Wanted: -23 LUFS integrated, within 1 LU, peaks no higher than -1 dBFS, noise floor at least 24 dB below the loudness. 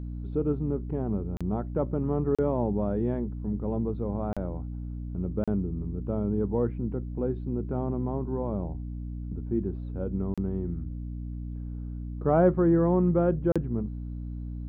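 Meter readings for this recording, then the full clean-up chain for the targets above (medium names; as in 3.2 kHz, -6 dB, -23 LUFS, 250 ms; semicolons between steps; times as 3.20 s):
dropouts 6; longest dropout 36 ms; hum 60 Hz; highest harmonic 300 Hz; hum level -33 dBFS; loudness -29.5 LUFS; peak level -10.0 dBFS; loudness target -23.0 LUFS
-> interpolate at 1.37/2.35/4.33/5.44/10.34/13.52 s, 36 ms; de-hum 60 Hz, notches 5; trim +6.5 dB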